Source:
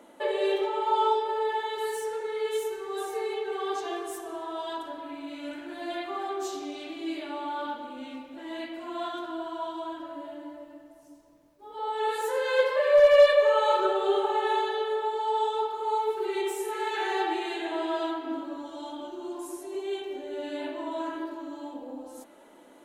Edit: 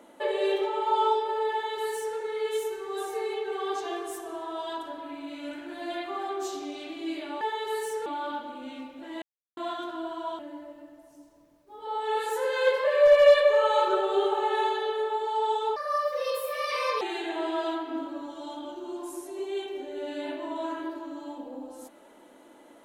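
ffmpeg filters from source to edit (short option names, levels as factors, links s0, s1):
-filter_complex "[0:a]asplit=8[s0][s1][s2][s3][s4][s5][s6][s7];[s0]atrim=end=7.412[s8];[s1]atrim=start=1.518:end=2.172[s9];[s2]atrim=start=7.408:end=8.57,asetpts=PTS-STARTPTS,afade=t=out:st=1.158:d=0.004:c=hsin[s10];[s3]atrim=start=8.57:end=8.92,asetpts=PTS-STARTPTS,volume=0[s11];[s4]atrim=start=8.92:end=9.742,asetpts=PTS-STARTPTS,afade=t=in:d=0.004:c=hsin[s12];[s5]atrim=start=10.308:end=15.684[s13];[s6]atrim=start=15.68:end=17.37,asetpts=PTS-STARTPTS,asetrate=59535,aresample=44100[s14];[s7]atrim=start=17.366[s15];[s8][s9]acrossfade=d=0.004:c1=hsin:c2=hsin[s16];[s10][s11][s12]concat=n=3:v=0:a=1[s17];[s16][s17]acrossfade=d=0.004:c1=hsin:c2=hsin[s18];[s18][s13]acrossfade=d=0.004:c1=hsin:c2=hsin[s19];[s19][s14]acrossfade=d=0.004:c1=hsin:c2=hsin[s20];[s20][s15]acrossfade=d=0.004:c1=hsin:c2=hsin"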